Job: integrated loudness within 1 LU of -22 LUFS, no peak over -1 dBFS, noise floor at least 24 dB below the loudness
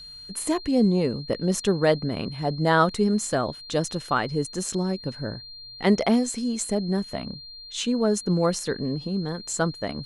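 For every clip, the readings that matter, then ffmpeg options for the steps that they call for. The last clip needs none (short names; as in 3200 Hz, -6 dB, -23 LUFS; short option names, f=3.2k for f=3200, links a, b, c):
steady tone 4200 Hz; tone level -40 dBFS; loudness -25.0 LUFS; peak -7.0 dBFS; loudness target -22.0 LUFS
-> -af "bandreject=f=4.2k:w=30"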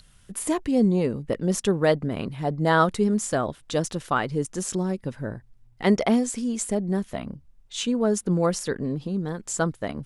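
steady tone none; loudness -25.0 LUFS; peak -7.0 dBFS; loudness target -22.0 LUFS
-> -af "volume=3dB"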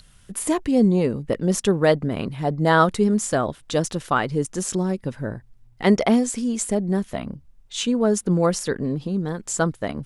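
loudness -22.0 LUFS; peak -4.0 dBFS; noise floor -52 dBFS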